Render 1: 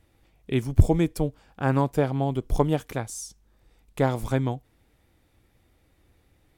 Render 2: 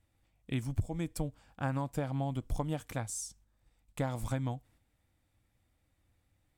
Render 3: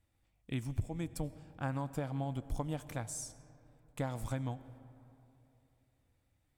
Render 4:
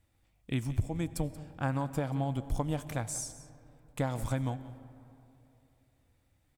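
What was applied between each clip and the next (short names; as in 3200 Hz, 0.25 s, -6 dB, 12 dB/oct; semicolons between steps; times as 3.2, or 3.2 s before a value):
gate -56 dBFS, range -6 dB; thirty-one-band EQ 100 Hz +5 dB, 400 Hz -12 dB, 8000 Hz +6 dB; compressor 12:1, threshold -23 dBFS, peak gain reduction 16.5 dB; gain -5.5 dB
reverb RT60 3.0 s, pre-delay 50 ms, DRR 15.5 dB; gain -3 dB
echo 0.181 s -17 dB; gain +5 dB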